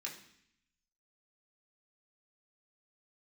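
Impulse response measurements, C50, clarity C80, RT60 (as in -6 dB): 8.5 dB, 12.0 dB, 0.65 s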